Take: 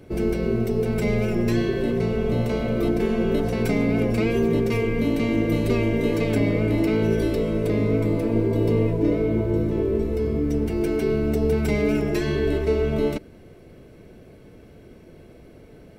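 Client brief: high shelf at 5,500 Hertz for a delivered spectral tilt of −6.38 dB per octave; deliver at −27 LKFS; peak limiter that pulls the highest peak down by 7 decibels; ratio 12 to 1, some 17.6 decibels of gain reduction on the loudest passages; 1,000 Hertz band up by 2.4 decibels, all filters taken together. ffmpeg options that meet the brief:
ffmpeg -i in.wav -af "equalizer=frequency=1000:width_type=o:gain=3,highshelf=frequency=5500:gain=6,acompressor=threshold=-35dB:ratio=12,volume=15dB,alimiter=limit=-17.5dB:level=0:latency=1" out.wav

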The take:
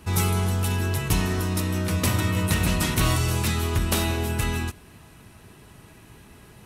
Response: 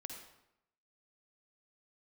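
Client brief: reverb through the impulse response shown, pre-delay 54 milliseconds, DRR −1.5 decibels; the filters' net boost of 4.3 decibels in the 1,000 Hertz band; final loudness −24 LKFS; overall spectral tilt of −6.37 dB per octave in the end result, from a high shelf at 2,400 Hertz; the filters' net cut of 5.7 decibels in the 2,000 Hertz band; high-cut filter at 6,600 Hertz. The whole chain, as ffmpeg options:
-filter_complex "[0:a]lowpass=6600,equalizer=frequency=1000:width_type=o:gain=8,equalizer=frequency=2000:width_type=o:gain=-6.5,highshelf=frequency=2400:gain=-7,asplit=2[link_01][link_02];[1:a]atrim=start_sample=2205,adelay=54[link_03];[link_02][link_03]afir=irnorm=-1:irlink=0,volume=4.5dB[link_04];[link_01][link_04]amix=inputs=2:normalize=0,volume=-2.5dB"

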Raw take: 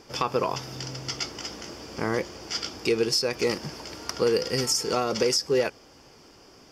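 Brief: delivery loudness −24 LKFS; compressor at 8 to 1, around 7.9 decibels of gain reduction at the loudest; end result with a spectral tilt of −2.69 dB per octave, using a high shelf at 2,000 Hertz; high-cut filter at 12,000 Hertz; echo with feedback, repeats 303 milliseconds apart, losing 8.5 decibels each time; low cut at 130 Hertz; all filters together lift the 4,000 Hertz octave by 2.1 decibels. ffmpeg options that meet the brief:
ffmpeg -i in.wav -af "highpass=130,lowpass=12000,highshelf=frequency=2000:gain=-4,equalizer=frequency=4000:width_type=o:gain=8,acompressor=threshold=-27dB:ratio=8,aecho=1:1:303|606|909|1212:0.376|0.143|0.0543|0.0206,volume=7.5dB" out.wav

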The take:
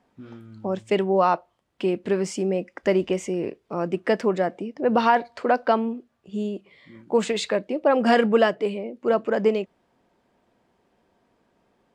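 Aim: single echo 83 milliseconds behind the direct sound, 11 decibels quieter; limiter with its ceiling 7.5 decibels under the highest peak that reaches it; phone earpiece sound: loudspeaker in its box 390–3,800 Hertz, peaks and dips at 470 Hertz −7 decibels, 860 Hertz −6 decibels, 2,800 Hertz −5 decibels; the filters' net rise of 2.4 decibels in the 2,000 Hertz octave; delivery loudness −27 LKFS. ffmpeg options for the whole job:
ffmpeg -i in.wav -af "equalizer=frequency=2000:width_type=o:gain=4,alimiter=limit=-12dB:level=0:latency=1,highpass=390,equalizer=frequency=470:width_type=q:width=4:gain=-7,equalizer=frequency=860:width_type=q:width=4:gain=-6,equalizer=frequency=2800:width_type=q:width=4:gain=-5,lowpass=frequency=3800:width=0.5412,lowpass=frequency=3800:width=1.3066,aecho=1:1:83:0.282,volume=3dB" out.wav

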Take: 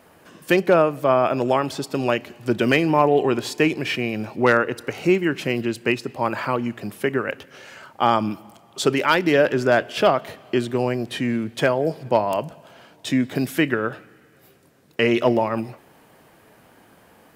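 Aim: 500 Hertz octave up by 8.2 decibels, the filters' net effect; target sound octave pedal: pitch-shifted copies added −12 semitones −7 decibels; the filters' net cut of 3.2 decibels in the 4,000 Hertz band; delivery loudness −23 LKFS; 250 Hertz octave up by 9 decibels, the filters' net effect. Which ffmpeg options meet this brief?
ffmpeg -i in.wav -filter_complex "[0:a]equalizer=frequency=250:width_type=o:gain=8.5,equalizer=frequency=500:width_type=o:gain=8,equalizer=frequency=4000:width_type=o:gain=-5,asplit=2[link_01][link_02];[link_02]asetrate=22050,aresample=44100,atempo=2,volume=-7dB[link_03];[link_01][link_03]amix=inputs=2:normalize=0,volume=-9.5dB" out.wav

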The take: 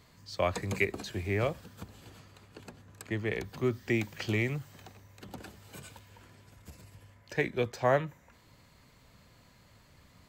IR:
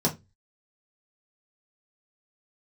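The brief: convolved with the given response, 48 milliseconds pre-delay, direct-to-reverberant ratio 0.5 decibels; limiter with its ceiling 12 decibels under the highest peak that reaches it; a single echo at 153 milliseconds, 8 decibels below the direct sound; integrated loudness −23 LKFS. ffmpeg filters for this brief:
-filter_complex "[0:a]alimiter=level_in=0.5dB:limit=-24dB:level=0:latency=1,volume=-0.5dB,aecho=1:1:153:0.398,asplit=2[link_01][link_02];[1:a]atrim=start_sample=2205,adelay=48[link_03];[link_02][link_03]afir=irnorm=-1:irlink=0,volume=-11dB[link_04];[link_01][link_04]amix=inputs=2:normalize=0,volume=7.5dB"

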